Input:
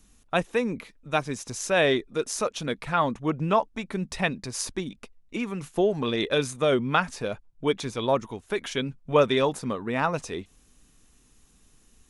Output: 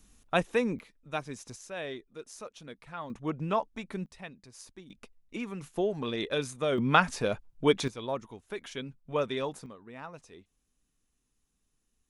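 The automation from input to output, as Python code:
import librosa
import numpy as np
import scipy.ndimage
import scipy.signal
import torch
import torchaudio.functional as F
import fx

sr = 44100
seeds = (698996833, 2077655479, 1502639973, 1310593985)

y = fx.gain(x, sr, db=fx.steps((0.0, -2.0), (0.79, -9.0), (1.56, -16.5), (3.1, -6.5), (4.06, -18.5), (4.9, -6.5), (6.78, 1.0), (7.88, -10.0), (9.66, -18.5)))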